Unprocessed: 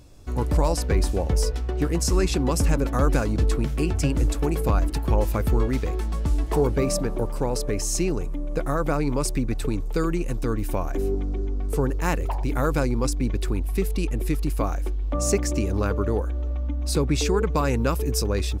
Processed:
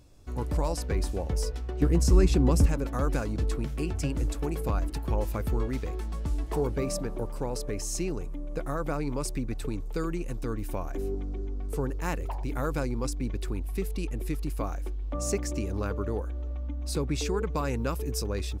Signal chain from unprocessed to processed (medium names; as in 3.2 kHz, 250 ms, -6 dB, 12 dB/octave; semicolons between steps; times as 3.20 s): 1.82–2.66 s: bass shelf 460 Hz +9.5 dB; trim -7 dB